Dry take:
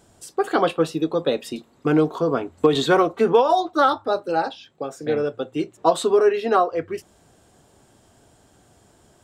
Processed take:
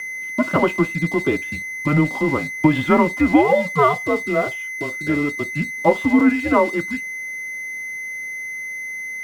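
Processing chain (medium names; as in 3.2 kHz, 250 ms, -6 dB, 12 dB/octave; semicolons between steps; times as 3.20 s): whistle 2.2 kHz -26 dBFS; mistuned SSB -150 Hz 270–3000 Hz; crossover distortion -38.5 dBFS; trim +2.5 dB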